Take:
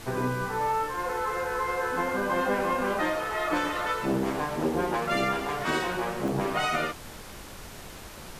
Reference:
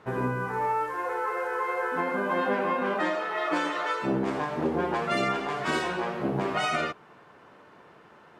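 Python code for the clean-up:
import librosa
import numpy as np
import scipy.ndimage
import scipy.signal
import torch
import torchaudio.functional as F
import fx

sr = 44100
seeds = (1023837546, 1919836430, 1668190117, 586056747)

y = fx.fix_interpolate(x, sr, at_s=(3.8, 5.33, 6.28), length_ms=1.5)
y = fx.noise_reduce(y, sr, print_start_s=7.69, print_end_s=8.19, reduce_db=11.0)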